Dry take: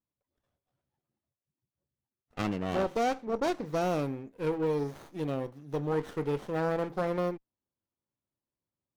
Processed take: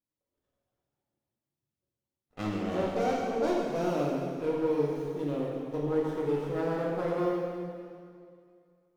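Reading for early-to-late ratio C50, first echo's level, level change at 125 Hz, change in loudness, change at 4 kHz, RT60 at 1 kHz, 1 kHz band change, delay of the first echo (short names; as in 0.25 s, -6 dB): -1.0 dB, none, -0.5 dB, +1.0 dB, -1.5 dB, 2.2 s, -1.0 dB, none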